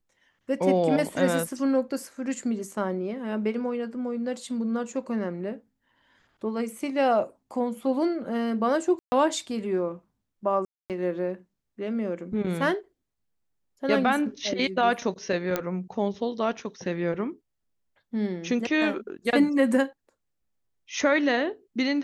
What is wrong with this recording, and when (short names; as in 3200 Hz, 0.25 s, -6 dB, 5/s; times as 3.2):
8.99–9.12 gap 0.13 s
10.65–10.9 gap 0.248 s
15.56 pop -11 dBFS